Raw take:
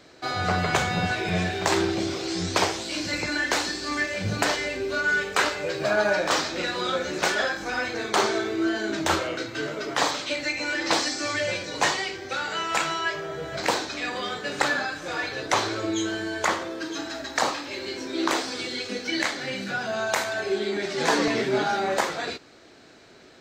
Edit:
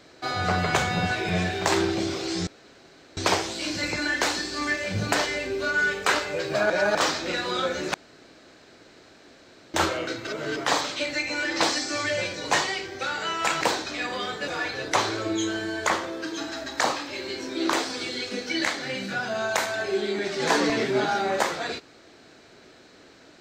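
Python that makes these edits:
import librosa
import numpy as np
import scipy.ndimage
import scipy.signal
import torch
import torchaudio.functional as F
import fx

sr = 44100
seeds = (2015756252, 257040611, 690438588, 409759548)

y = fx.edit(x, sr, fx.insert_room_tone(at_s=2.47, length_s=0.7),
    fx.reverse_span(start_s=6.0, length_s=0.25),
    fx.room_tone_fill(start_s=7.24, length_s=1.8),
    fx.reverse_span(start_s=9.57, length_s=0.29),
    fx.cut(start_s=12.91, length_s=0.73),
    fx.cut(start_s=14.51, length_s=0.55), tone=tone)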